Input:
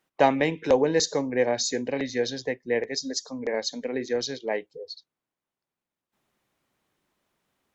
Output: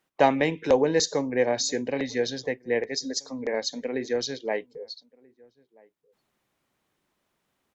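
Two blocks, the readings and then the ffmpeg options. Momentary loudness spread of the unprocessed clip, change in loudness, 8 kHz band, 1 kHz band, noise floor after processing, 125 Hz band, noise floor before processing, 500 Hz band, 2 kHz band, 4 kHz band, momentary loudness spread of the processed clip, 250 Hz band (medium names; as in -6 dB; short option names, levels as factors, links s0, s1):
11 LU, 0.0 dB, no reading, 0.0 dB, -77 dBFS, 0.0 dB, under -85 dBFS, 0.0 dB, 0.0 dB, 0.0 dB, 11 LU, 0.0 dB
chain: -filter_complex "[0:a]asplit=2[s0][s1];[s1]adelay=1283,volume=0.0447,highshelf=f=4000:g=-28.9[s2];[s0][s2]amix=inputs=2:normalize=0"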